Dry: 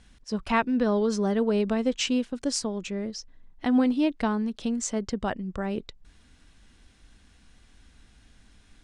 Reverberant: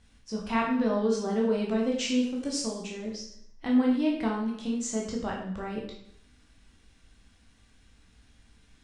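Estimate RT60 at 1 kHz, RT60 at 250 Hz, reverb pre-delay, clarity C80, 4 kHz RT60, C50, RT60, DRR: 0.70 s, 0.70 s, 6 ms, 7.0 dB, 0.60 s, 4.0 dB, 0.70 s, −2.5 dB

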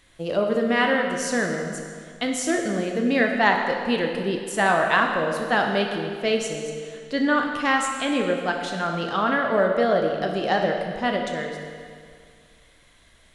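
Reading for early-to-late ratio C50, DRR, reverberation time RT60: 3.5 dB, 2.0 dB, 2.1 s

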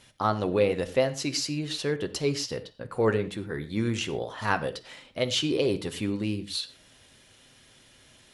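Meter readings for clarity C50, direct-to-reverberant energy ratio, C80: 15.0 dB, 8.5 dB, 18.0 dB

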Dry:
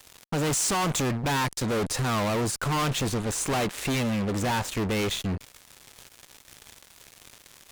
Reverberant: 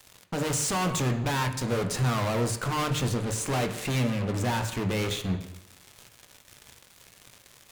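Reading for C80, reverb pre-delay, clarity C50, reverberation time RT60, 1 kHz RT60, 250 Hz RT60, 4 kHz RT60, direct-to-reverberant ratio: 11.5 dB, 16 ms, 9.5 dB, 0.85 s, 0.85 s, 0.85 s, 0.90 s, 5.5 dB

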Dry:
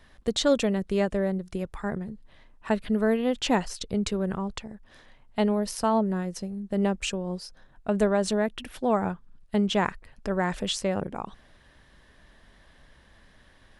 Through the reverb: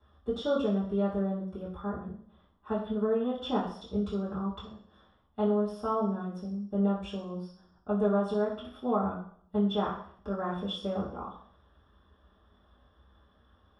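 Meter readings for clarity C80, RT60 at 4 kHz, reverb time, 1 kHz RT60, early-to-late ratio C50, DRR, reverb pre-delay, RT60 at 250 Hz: 9.0 dB, 0.65 s, 0.60 s, 0.55 s, 5.0 dB, −10.5 dB, 3 ms, 0.60 s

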